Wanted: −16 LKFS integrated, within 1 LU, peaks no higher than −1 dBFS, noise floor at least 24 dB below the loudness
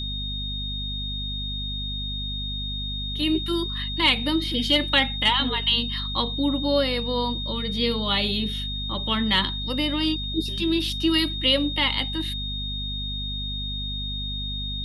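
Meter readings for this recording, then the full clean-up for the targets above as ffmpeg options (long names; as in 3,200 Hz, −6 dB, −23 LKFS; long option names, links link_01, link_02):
mains hum 50 Hz; hum harmonics up to 250 Hz; level of the hum −30 dBFS; interfering tone 3,700 Hz; level of the tone −30 dBFS; integrated loudness −24.5 LKFS; sample peak −7.5 dBFS; target loudness −16.0 LKFS
→ -af "bandreject=frequency=50:width_type=h:width=4,bandreject=frequency=100:width_type=h:width=4,bandreject=frequency=150:width_type=h:width=4,bandreject=frequency=200:width_type=h:width=4,bandreject=frequency=250:width_type=h:width=4"
-af "bandreject=frequency=3700:width=30"
-af "volume=8.5dB,alimiter=limit=-1dB:level=0:latency=1"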